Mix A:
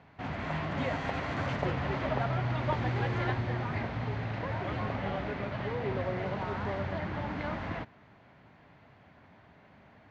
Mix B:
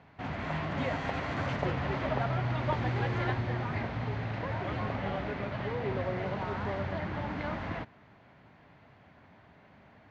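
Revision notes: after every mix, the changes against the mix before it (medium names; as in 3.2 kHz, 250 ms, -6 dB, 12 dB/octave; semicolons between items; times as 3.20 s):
master: add low-pass 11 kHz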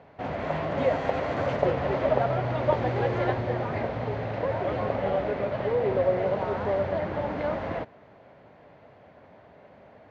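master: add peaking EQ 530 Hz +13 dB 1.1 oct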